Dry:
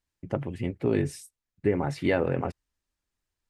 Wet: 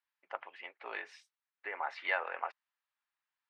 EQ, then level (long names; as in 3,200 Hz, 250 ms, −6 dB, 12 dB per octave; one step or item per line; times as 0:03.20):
high-pass filter 890 Hz 24 dB per octave
high-frequency loss of the air 240 metres
high-shelf EQ 7,200 Hz −11 dB
+3.0 dB